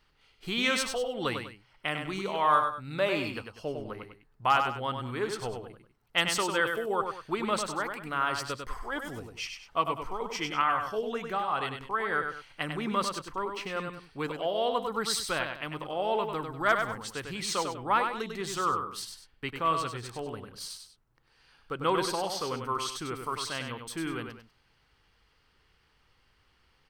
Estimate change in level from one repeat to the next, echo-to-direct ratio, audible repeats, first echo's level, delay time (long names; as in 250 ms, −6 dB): −9.0 dB, −5.5 dB, 2, −6.0 dB, 98 ms